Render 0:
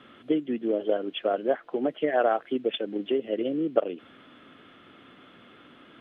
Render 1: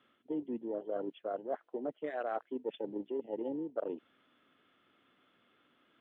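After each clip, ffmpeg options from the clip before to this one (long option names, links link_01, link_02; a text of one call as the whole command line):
ffmpeg -i in.wav -af "afwtdn=0.0224,lowshelf=frequency=370:gain=-5.5,areverse,acompressor=threshold=-34dB:ratio=6,areverse" out.wav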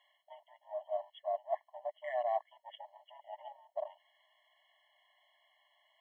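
ffmpeg -i in.wav -af "afftfilt=real='re*eq(mod(floor(b*sr/1024/560),2),1)':imag='im*eq(mod(floor(b*sr/1024/560),2),1)':win_size=1024:overlap=0.75,volume=4.5dB" out.wav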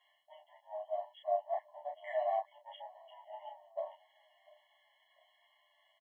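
ffmpeg -i in.wav -filter_complex "[0:a]asplit=2[link_01][link_02];[link_02]adelay=30,volume=-4dB[link_03];[link_01][link_03]amix=inputs=2:normalize=0,asplit=2[link_04][link_05];[link_05]adelay=695,lowpass=frequency=1800:poles=1,volume=-23.5dB,asplit=2[link_06][link_07];[link_07]adelay=695,lowpass=frequency=1800:poles=1,volume=0.4,asplit=2[link_08][link_09];[link_09]adelay=695,lowpass=frequency=1800:poles=1,volume=0.4[link_10];[link_04][link_06][link_08][link_10]amix=inputs=4:normalize=0,asplit=2[link_11][link_12];[link_12]adelay=10.8,afreqshift=-0.93[link_13];[link_11][link_13]amix=inputs=2:normalize=1,volume=1.5dB" out.wav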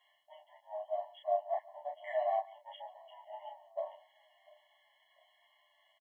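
ffmpeg -i in.wav -af "aecho=1:1:141:0.0841,volume=1dB" out.wav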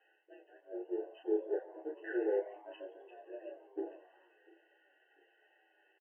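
ffmpeg -i in.wav -filter_complex "[0:a]equalizer=frequency=460:width=1.5:gain=-4.5,highpass=frequency=540:width_type=q:width=0.5412,highpass=frequency=540:width_type=q:width=1.307,lowpass=frequency=2800:width_type=q:width=0.5176,lowpass=frequency=2800:width_type=q:width=0.7071,lowpass=frequency=2800:width_type=q:width=1.932,afreqshift=-270,asplit=6[link_01][link_02][link_03][link_04][link_05][link_06];[link_02]adelay=87,afreqshift=110,volume=-19dB[link_07];[link_03]adelay=174,afreqshift=220,volume=-23.7dB[link_08];[link_04]adelay=261,afreqshift=330,volume=-28.5dB[link_09];[link_05]adelay=348,afreqshift=440,volume=-33.2dB[link_10];[link_06]adelay=435,afreqshift=550,volume=-37.9dB[link_11];[link_01][link_07][link_08][link_09][link_10][link_11]amix=inputs=6:normalize=0,volume=2dB" out.wav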